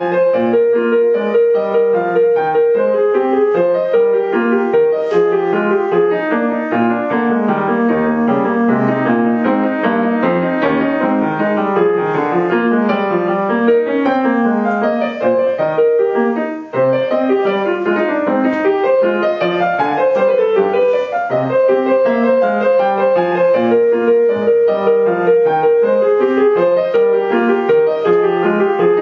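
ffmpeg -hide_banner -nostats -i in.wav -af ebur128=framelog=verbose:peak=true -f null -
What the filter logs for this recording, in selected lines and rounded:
Integrated loudness:
  I:         -14.0 LUFS
  Threshold: -24.0 LUFS
Loudness range:
  LRA:         2.2 LU
  Threshold: -34.0 LUFS
  LRA low:   -15.0 LUFS
  LRA high:  -12.8 LUFS
True peak:
  Peak:       -1.3 dBFS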